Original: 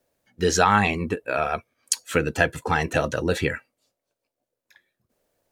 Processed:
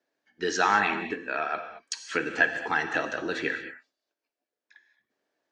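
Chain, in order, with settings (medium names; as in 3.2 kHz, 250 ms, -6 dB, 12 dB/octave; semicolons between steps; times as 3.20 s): cabinet simulation 310–5900 Hz, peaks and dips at 310 Hz +6 dB, 540 Hz -7 dB, 1.7 kHz +7 dB; gated-style reverb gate 250 ms flat, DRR 7 dB; trim -5.5 dB; Opus 64 kbps 48 kHz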